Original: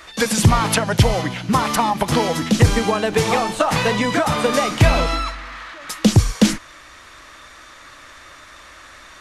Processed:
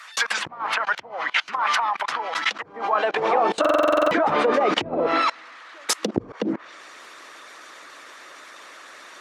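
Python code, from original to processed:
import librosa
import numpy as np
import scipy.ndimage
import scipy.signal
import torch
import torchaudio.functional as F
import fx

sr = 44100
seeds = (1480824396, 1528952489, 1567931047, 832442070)

y = fx.highpass(x, sr, hz=150.0, slope=6, at=(5.12, 6.16), fade=0.02)
y = fx.env_lowpass_down(y, sr, base_hz=380.0, full_db=-10.0)
y = fx.hpss(y, sr, part='percussive', gain_db=9)
y = fx.level_steps(y, sr, step_db=24)
y = fx.filter_sweep_highpass(y, sr, from_hz=1200.0, to_hz=360.0, start_s=2.56, end_s=3.59, q=1.3)
y = fx.buffer_glitch(y, sr, at_s=(3.6,), block=2048, repeats=10)
y = F.gain(torch.from_numpy(y), 4.0).numpy()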